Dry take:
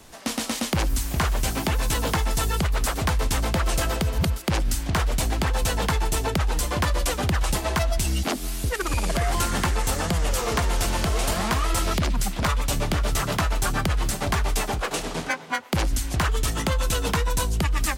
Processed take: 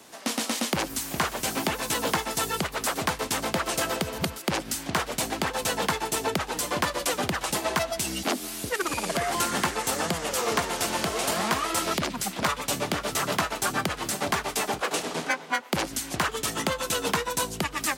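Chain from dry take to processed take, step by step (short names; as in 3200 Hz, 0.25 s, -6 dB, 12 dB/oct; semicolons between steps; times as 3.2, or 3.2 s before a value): HPF 210 Hz 12 dB/oct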